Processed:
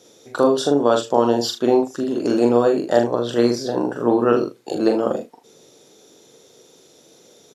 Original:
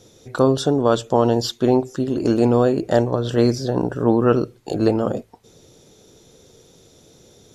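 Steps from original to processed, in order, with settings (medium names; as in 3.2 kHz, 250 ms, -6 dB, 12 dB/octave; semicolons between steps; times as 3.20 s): high-pass 260 Hz 12 dB/octave; on a send: early reflections 42 ms -4.5 dB, 77 ms -14 dB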